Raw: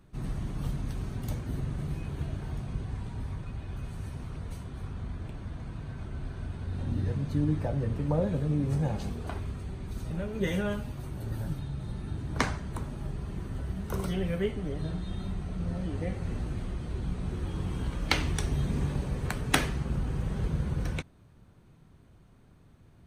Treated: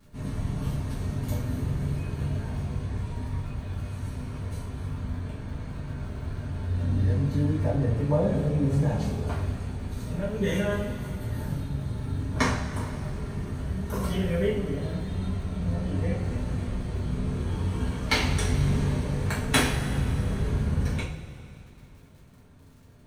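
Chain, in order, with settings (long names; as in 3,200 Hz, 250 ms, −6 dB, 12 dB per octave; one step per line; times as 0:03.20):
surface crackle 27 per second −46 dBFS
coupled-rooms reverb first 0.41 s, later 2.9 s, from −16 dB, DRR −8.5 dB
level −4.5 dB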